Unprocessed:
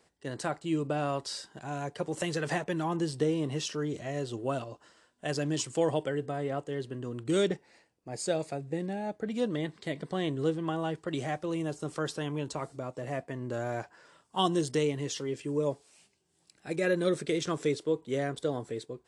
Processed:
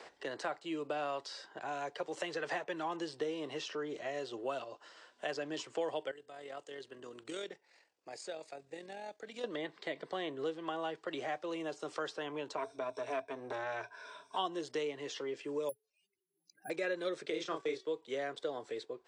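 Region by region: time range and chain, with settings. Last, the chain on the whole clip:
6.11–9.44 s: pre-emphasis filter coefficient 0.8 + AM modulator 43 Hz, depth 30%
12.57–14.37 s: rippled EQ curve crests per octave 1.6, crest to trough 16 dB + transformer saturation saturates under 720 Hz
15.69–16.70 s: spectral contrast enhancement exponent 3.6 + careless resampling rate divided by 4×, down filtered, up zero stuff + upward expansion, over -54 dBFS
17.30–17.85 s: gate -37 dBFS, range -16 dB + doubling 31 ms -4.5 dB + de-hum 379.6 Hz, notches 34
whole clip: three-band isolator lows -21 dB, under 360 Hz, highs -23 dB, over 6.3 kHz; three bands compressed up and down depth 70%; trim -3.5 dB

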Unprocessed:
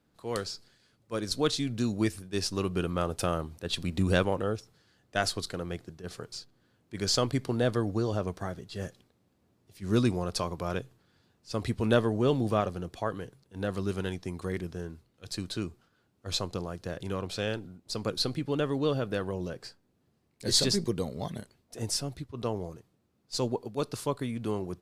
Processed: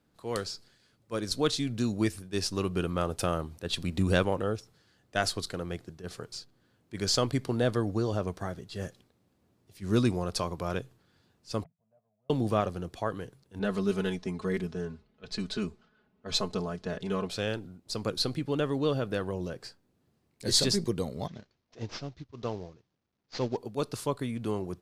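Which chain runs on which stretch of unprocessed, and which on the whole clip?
11.64–12.30 s: CVSD coder 16 kbps + inverted gate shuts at -29 dBFS, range -33 dB + two resonant band-passes 330 Hz, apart 2 oct
13.59–17.30 s: level-controlled noise filter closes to 2.7 kHz, open at -27.5 dBFS + treble shelf 7.8 kHz -5 dB + comb 4.7 ms, depth 92%
21.27–23.57 s: CVSD coder 32 kbps + upward expansion, over -47 dBFS
whole clip: none

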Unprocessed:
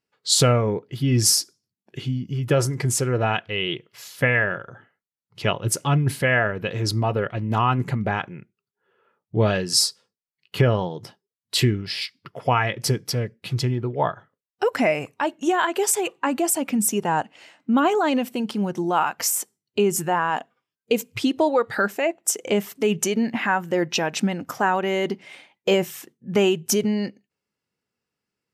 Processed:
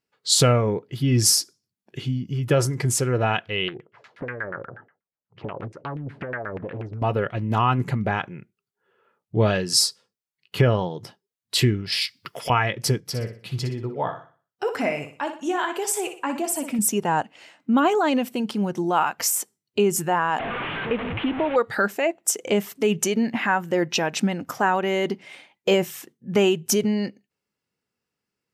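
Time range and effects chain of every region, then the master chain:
3.68–7.02 s: compression 12:1, threshold -29 dBFS + LFO low-pass saw down 8.3 Hz 360–2200 Hz + loudspeaker Doppler distortion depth 0.65 ms
11.92–12.50 s: tilt EQ +2.5 dB/octave + three bands compressed up and down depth 100%
13.00–16.79 s: high-pass 60 Hz + flange 1.4 Hz, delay 5.9 ms, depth 4.6 ms, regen -63% + flutter echo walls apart 10.4 m, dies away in 0.4 s
20.39–21.56 s: one-bit delta coder 16 kbps, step -22.5 dBFS + compression 1.5:1, threshold -25 dBFS
whole clip: none

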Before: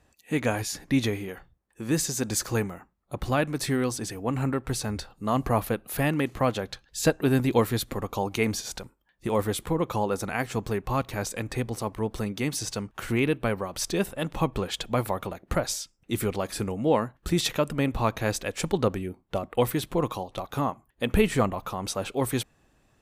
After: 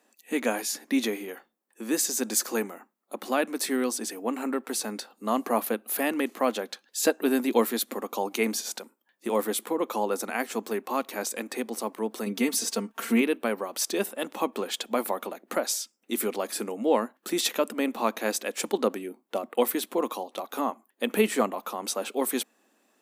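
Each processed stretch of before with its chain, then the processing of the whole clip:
12.26–13.21 s: bass shelf 200 Hz +6.5 dB + comb 4.4 ms, depth 77%
whole clip: elliptic high-pass 220 Hz, stop band 40 dB; treble shelf 9.5 kHz +10 dB

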